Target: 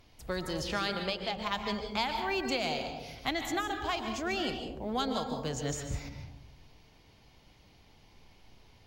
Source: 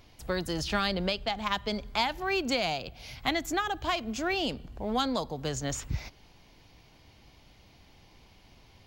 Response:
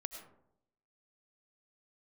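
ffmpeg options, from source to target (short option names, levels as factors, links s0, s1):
-filter_complex "[0:a]asettb=1/sr,asplit=3[s0][s1][s2];[s0]atrim=end=0.734[s3];[s1]atrim=start=0.73:end=1.36,asetpts=PTS-STARTPTS,afade=t=in:d=0.004:c=qsin,afade=t=out:st=0.626:d=0.004:c=qsin,lowshelf=f=160:g=-9[s4];[s2]atrim=start=1.356[s5];[s3][s4]acrossfade=d=0.004:c1=hsin:c2=qsin[s6];[s6][s5]acrossfade=d=0.004:c1=qsin:c2=hsin[s7];[1:a]atrim=start_sample=2205,asetrate=30429,aresample=44100[s8];[s7][s8]afir=irnorm=-1:irlink=0,volume=0.75"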